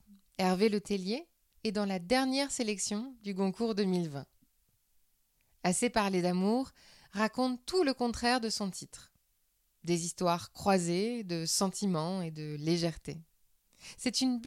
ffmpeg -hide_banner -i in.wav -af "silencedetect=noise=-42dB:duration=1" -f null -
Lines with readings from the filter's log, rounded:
silence_start: 4.23
silence_end: 5.65 | silence_duration: 1.41